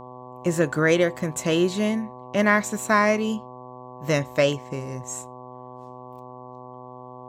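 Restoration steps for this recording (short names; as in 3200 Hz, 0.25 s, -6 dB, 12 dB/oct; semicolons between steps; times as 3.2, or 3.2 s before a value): de-hum 125.7 Hz, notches 9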